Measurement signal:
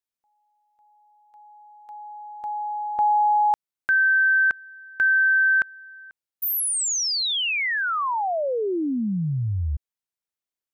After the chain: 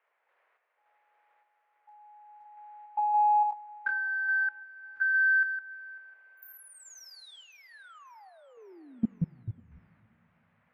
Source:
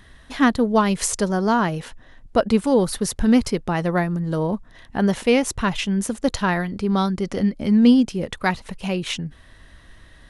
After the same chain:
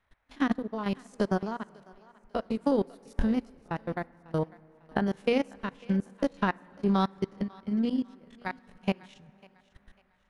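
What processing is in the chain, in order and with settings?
spectrogram pixelated in time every 50 ms; treble shelf 9.9 kHz -7.5 dB; hum notches 60/120/180/240 Hz; transient shaper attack +8 dB, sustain -4 dB; level held to a coarse grid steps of 21 dB; transient shaper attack +1 dB, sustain -6 dB; band noise 470–2200 Hz -64 dBFS; random-step tremolo; thinning echo 548 ms, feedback 36%, high-pass 520 Hz, level -16 dB; plate-style reverb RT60 3.7 s, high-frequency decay 0.45×, DRR 18 dB; upward expansion 1.5:1, over -34 dBFS; trim -1.5 dB

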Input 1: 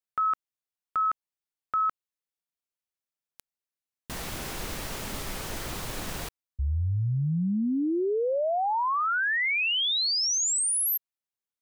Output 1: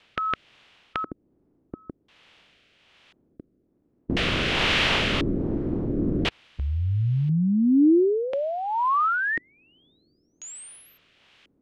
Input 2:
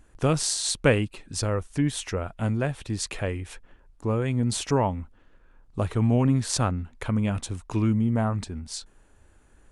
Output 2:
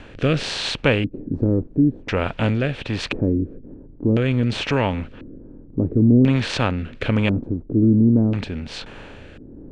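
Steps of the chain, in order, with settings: spectral levelling over time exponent 0.6; LFO low-pass square 0.48 Hz 310–3000 Hz; rotary cabinet horn 1.2 Hz; trim +3 dB

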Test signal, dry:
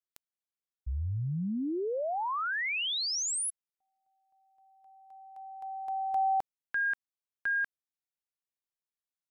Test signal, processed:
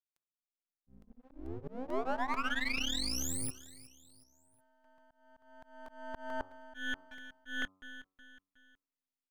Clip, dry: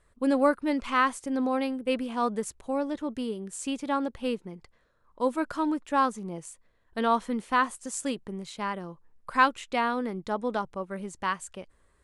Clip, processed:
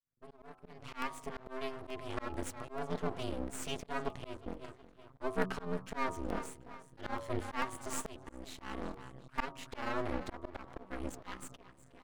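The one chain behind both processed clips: fade-in on the opening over 1.96 s; comb 5.7 ms, depth 100%; level rider gain up to 4 dB; peaking EQ 180 Hz -4.5 dB 0.38 oct; on a send: feedback delay 367 ms, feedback 42%, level -18.5 dB; on the sum: ring modulator 130 Hz; half-wave rectifier; de-hum 94.21 Hz, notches 14; slow attack 264 ms; treble shelf 5.6 kHz -5.5 dB; crackling interface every 0.44 s, samples 64, repeat, from 0.58 s; trim -2 dB

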